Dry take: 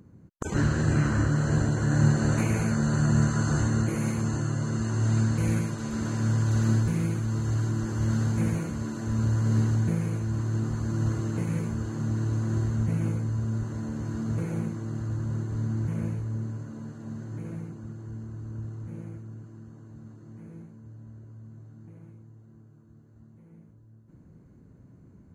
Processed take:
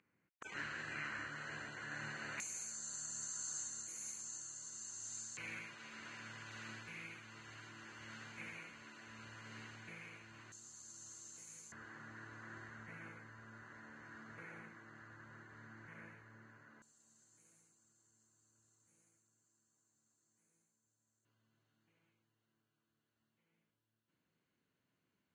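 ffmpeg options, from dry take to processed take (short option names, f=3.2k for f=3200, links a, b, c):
-af "asetnsamples=n=441:p=0,asendcmd='2.4 bandpass f 6900;5.37 bandpass f 2400;10.52 bandpass f 6900;11.72 bandpass f 1800;16.82 bandpass f 7900;21.25 bandpass f 3100',bandpass=f=2.3k:t=q:w=3:csg=0"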